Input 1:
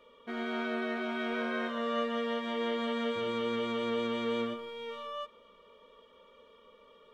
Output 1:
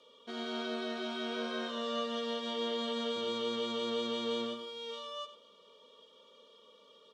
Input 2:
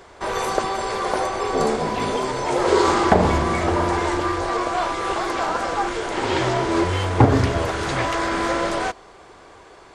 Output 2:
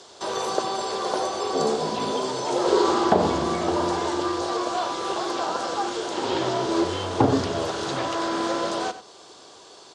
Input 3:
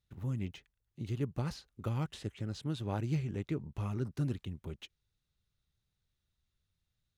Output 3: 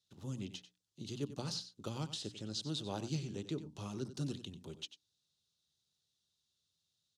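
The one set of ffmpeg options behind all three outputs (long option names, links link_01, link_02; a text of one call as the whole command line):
ffmpeg -i in.wav -filter_complex "[0:a]highpass=160,lowpass=6300,highshelf=frequency=2100:gain=-11,bandreject=frequency=60:width_type=h:width=6,bandreject=frequency=120:width_type=h:width=6,bandreject=frequency=180:width_type=h:width=6,bandreject=frequency=240:width_type=h:width=6,bandreject=frequency=300:width_type=h:width=6,acrossover=split=490|2400[link_01][link_02][link_03];[link_03]acompressor=threshold=-53dB:ratio=6[link_04];[link_01][link_02][link_04]amix=inputs=3:normalize=0,aecho=1:1:93:0.224,aexciter=amount=11.6:drive=5.6:freq=3200,volume=-2dB" out.wav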